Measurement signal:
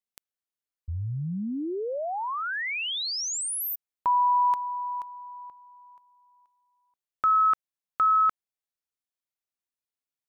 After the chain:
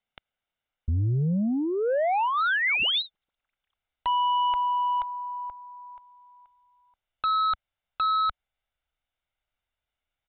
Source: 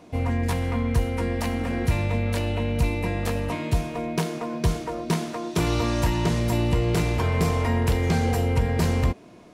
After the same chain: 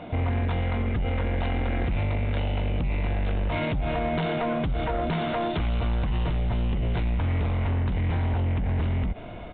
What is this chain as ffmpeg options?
-af "aecho=1:1:1.4:0.43,asubboost=boost=5.5:cutoff=72,acompressor=threshold=-28dB:ratio=5:attack=0.26:release=85:knee=1:detection=peak,aresample=8000,aeval=exprs='0.0794*sin(PI/2*2*val(0)/0.0794)':c=same,aresample=44100"

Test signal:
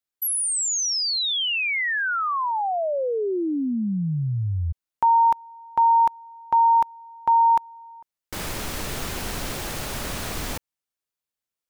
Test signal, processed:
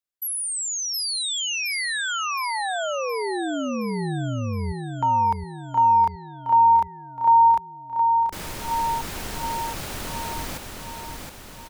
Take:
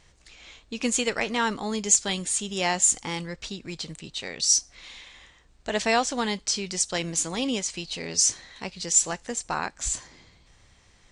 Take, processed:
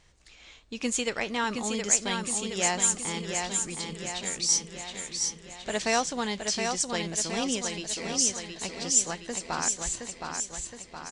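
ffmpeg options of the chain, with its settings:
-af "aecho=1:1:718|1436|2154|2872|3590|4308|5026:0.562|0.315|0.176|0.0988|0.0553|0.031|0.0173,volume=-3.5dB"

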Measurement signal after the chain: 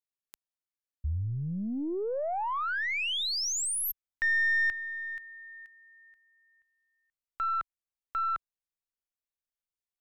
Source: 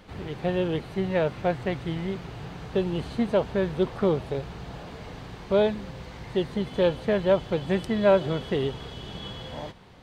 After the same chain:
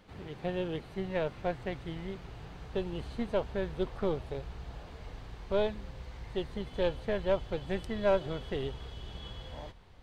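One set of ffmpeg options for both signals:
-af "aeval=exprs='0.376*(cos(1*acos(clip(val(0)/0.376,-1,1)))-cos(1*PI/2))+0.00422*(cos(6*acos(clip(val(0)/0.376,-1,1)))-cos(6*PI/2))+0.00841*(cos(7*acos(clip(val(0)/0.376,-1,1)))-cos(7*PI/2))':c=same,asubboost=boost=5.5:cutoff=68,volume=-7dB"

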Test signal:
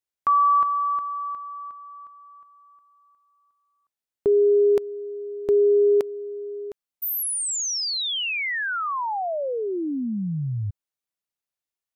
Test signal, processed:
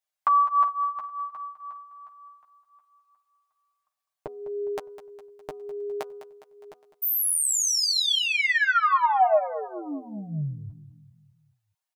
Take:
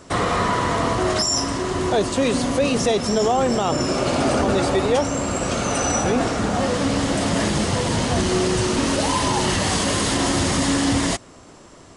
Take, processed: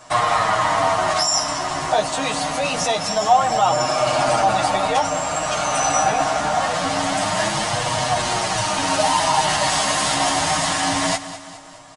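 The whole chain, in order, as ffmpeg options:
-filter_complex "[0:a]flanger=delay=8.2:depth=5.9:regen=6:speed=0.25:shape=sinusoidal,lowshelf=f=550:t=q:w=3:g=-8,aecho=1:1:6.5:0.6,bandreject=f=246.2:t=h:w=4,bandreject=f=492.4:t=h:w=4,bandreject=f=738.6:t=h:w=4,bandreject=f=984.8:t=h:w=4,bandreject=f=1.231k:t=h:w=4,bandreject=f=1.4772k:t=h:w=4,asplit=2[a][b];[b]aecho=0:1:205|410|615|820|1025:0.2|0.104|0.054|0.0281|0.0146[c];[a][c]amix=inputs=2:normalize=0,volume=4dB"

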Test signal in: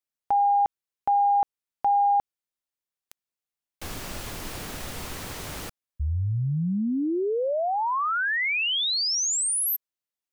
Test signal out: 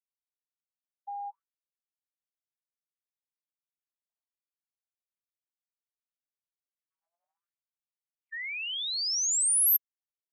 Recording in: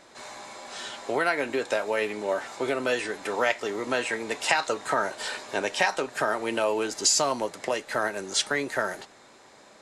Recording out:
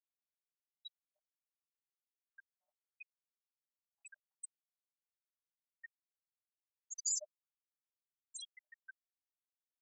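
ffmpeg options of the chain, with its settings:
-af "bandreject=f=126.2:t=h:w=4,bandreject=f=252.4:t=h:w=4,bandreject=f=378.6:t=h:w=4,bandreject=f=504.8:t=h:w=4,bandreject=f=631:t=h:w=4,bandreject=f=757.2:t=h:w=4,bandreject=f=883.4:t=h:w=4,bandreject=f=1.0096k:t=h:w=4,bandreject=f=1.1358k:t=h:w=4,bandreject=f=1.262k:t=h:w=4,bandreject=f=1.3882k:t=h:w=4,bandreject=f=1.5144k:t=h:w=4,bandreject=f=1.6406k:t=h:w=4,bandreject=f=1.7668k:t=h:w=4,bandreject=f=1.893k:t=h:w=4,bandreject=f=2.0192k:t=h:w=4,bandreject=f=2.1454k:t=h:w=4,bandreject=f=2.2716k:t=h:w=4,bandreject=f=2.3978k:t=h:w=4,bandreject=f=2.524k:t=h:w=4,bandreject=f=2.6502k:t=h:w=4,bandreject=f=2.7764k:t=h:w=4,bandreject=f=2.9026k:t=h:w=4,bandreject=f=3.0288k:t=h:w=4,bandreject=f=3.155k:t=h:w=4,bandreject=f=3.2812k:t=h:w=4,bandreject=f=3.4074k:t=h:w=4,bandreject=f=3.5336k:t=h:w=4,bandreject=f=3.6598k:t=h:w=4,bandreject=f=3.786k:t=h:w=4,bandreject=f=3.9122k:t=h:w=4,bandreject=f=4.0384k:t=h:w=4,areverse,acompressor=threshold=-37dB:ratio=8:attack=2.5:release=61:knee=6:detection=rms,areverse,aemphasis=mode=production:type=75kf,afftfilt=real='re*gte(hypot(re,im),0.1)':imag='im*gte(hypot(re,im),0.1)':win_size=1024:overlap=0.75,afftfilt=real='re*gte(b*sr/1024,570*pow(6600/570,0.5+0.5*sin(2*PI*0.66*pts/sr)))':imag='im*gte(b*sr/1024,570*pow(6600/570,0.5+0.5*sin(2*PI*0.66*pts/sr)))':win_size=1024:overlap=0.75"

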